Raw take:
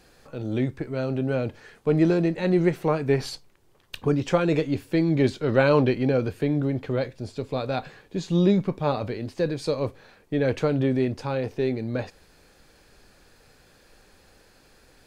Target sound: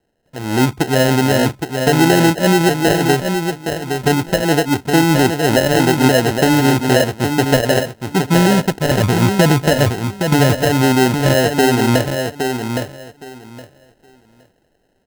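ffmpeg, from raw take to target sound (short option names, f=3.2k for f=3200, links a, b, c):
-filter_complex "[0:a]lowshelf=f=63:g=-12,acrossover=split=1100[a][b];[a]dynaudnorm=f=120:g=11:m=13.5dB[c];[c][b]amix=inputs=2:normalize=0,asettb=1/sr,asplit=3[d][e][f];[d]atrim=end=8.914[g];[e]atrim=start=8.91:end=10.56,asetpts=PTS-STARTPTS,afade=t=in:d=0.004:c=qsin,afade=t=out:st=1.646:d=0.004:c=qsin,equalizer=f=100:w=0.45:g=12.5[h];[f]atrim=start=10.556[i];[g][h]acrossfade=d=0.004:c1=hsin:c2=qsin[j];[j][i]acrossfade=d=0.004:c1=qsin:c2=hsin,afwtdn=0.0398,acrusher=samples=38:mix=1:aa=0.000001,alimiter=limit=-9.5dB:level=0:latency=1:release=328,aecho=1:1:816|1632|2448:0.501|0.0902|0.0162,volume=4.5dB"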